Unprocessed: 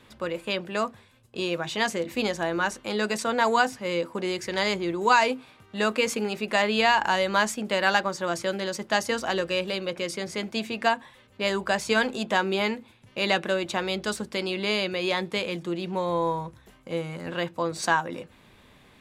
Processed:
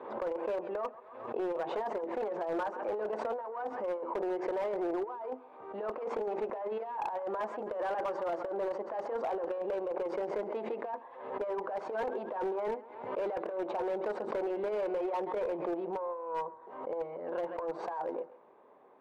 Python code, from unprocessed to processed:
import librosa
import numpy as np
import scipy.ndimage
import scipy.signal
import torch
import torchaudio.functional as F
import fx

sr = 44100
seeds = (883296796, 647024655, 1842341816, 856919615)

y = fx.tube_stage(x, sr, drive_db=26.0, bias=0.65)
y = scipy.signal.sosfilt(scipy.signal.cheby1(2, 1.0, [410.0, 960.0], 'bandpass', fs=sr, output='sos'), y)
y = fx.over_compress(y, sr, threshold_db=-36.0, ratio=-0.5)
y = fx.echo_thinned(y, sr, ms=134, feedback_pct=45, hz=790.0, wet_db=-14)
y = np.clip(y, -10.0 ** (-31.5 / 20.0), 10.0 ** (-31.5 / 20.0))
y = fx.pre_swell(y, sr, db_per_s=62.0)
y = y * 10.0 ** (3.0 / 20.0)